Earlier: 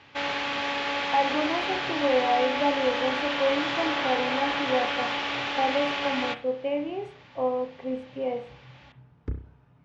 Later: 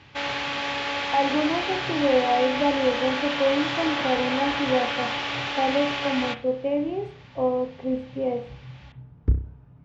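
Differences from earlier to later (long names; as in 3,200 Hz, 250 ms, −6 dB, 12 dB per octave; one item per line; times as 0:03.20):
speech: add spectral tilt −3 dB per octave
master: add high-shelf EQ 4,400 Hz +4.5 dB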